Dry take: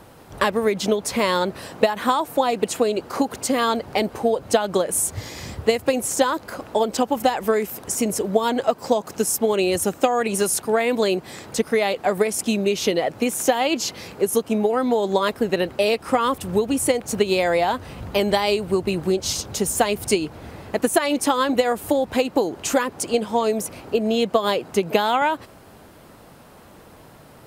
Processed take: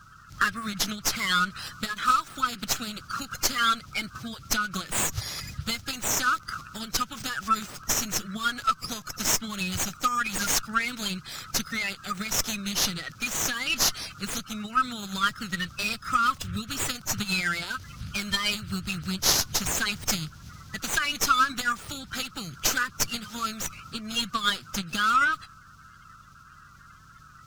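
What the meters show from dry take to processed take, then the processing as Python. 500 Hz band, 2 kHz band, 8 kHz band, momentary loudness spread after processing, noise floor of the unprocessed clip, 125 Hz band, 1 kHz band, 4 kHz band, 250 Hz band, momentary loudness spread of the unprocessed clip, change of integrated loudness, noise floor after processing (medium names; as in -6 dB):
-23.5 dB, +0.5 dB, -1.0 dB, 10 LU, -47 dBFS, -4.0 dB, -5.0 dB, +0.5 dB, -11.5 dB, 5 LU, -5.5 dB, -51 dBFS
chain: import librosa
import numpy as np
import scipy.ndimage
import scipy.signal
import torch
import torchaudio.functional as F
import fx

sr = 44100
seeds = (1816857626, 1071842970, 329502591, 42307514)

y = fx.spec_quant(x, sr, step_db=30)
y = fx.curve_eq(y, sr, hz=(150.0, 450.0, 870.0, 1300.0, 1900.0, 6100.0, 10000.0), db=(0, -29, -27, 8, -4, 10, -4))
y = fx.running_max(y, sr, window=3)
y = y * librosa.db_to_amplitude(-1.0)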